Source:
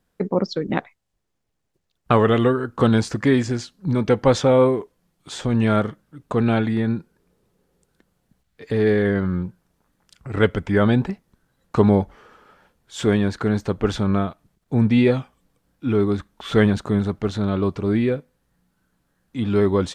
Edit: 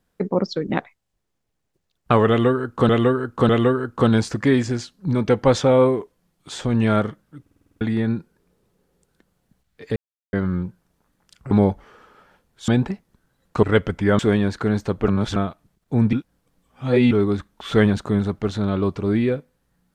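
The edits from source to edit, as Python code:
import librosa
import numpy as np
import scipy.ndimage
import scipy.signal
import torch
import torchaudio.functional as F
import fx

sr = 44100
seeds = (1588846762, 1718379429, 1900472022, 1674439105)

y = fx.edit(x, sr, fx.repeat(start_s=2.29, length_s=0.6, count=3),
    fx.stutter_over(start_s=6.21, slice_s=0.05, count=8),
    fx.silence(start_s=8.76, length_s=0.37),
    fx.swap(start_s=10.31, length_s=0.56, other_s=11.82, other_length_s=1.17),
    fx.reverse_span(start_s=13.88, length_s=0.28),
    fx.reverse_span(start_s=14.93, length_s=0.98), tone=tone)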